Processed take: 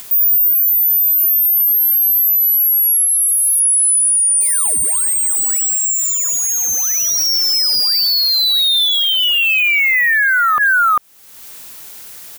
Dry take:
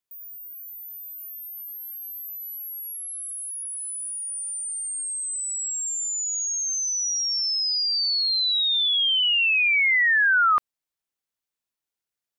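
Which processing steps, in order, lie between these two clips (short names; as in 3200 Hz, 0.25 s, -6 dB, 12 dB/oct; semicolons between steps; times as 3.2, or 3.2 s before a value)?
4.62–5.64 HPF 530 Hz 24 dB/oct; in parallel at -9 dB: wrapped overs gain 28.5 dB; on the sum: dynamic EQ 5600 Hz, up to -8 dB, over -40 dBFS, Q 1; 3.05–3.6 hard clip -37 dBFS, distortion -23 dB; high shelf 8600 Hz +8 dB; upward compressor, threshold -44 dBFS; on a send: echo 0.396 s -16 dB; on the sum: maximiser +34.5 dB; gain -8 dB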